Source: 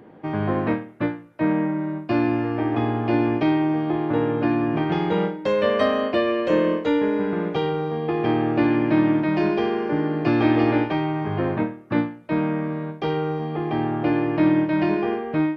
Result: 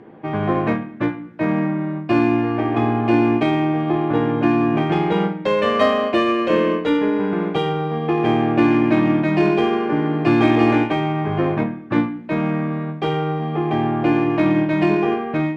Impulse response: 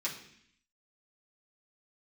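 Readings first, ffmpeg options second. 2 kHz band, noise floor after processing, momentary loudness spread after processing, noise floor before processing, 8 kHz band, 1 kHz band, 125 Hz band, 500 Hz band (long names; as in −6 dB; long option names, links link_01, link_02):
+4.0 dB, −32 dBFS, 6 LU, −42 dBFS, can't be measured, +5.0 dB, +4.0 dB, +3.0 dB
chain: -filter_complex "[0:a]asplit=2[link_01][link_02];[1:a]atrim=start_sample=2205[link_03];[link_02][link_03]afir=irnorm=-1:irlink=0,volume=-8.5dB[link_04];[link_01][link_04]amix=inputs=2:normalize=0,adynamicsmooth=sensitivity=2:basefreq=4300,volume=3dB"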